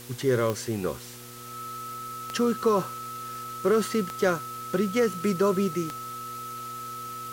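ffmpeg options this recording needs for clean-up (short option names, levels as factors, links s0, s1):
-af "adeclick=t=4,bandreject=f=121.1:t=h:w=4,bandreject=f=242.2:t=h:w=4,bandreject=f=363.3:t=h:w=4,bandreject=f=484.4:t=h:w=4,bandreject=f=1300:w=30,afftdn=nr=30:nf=-39"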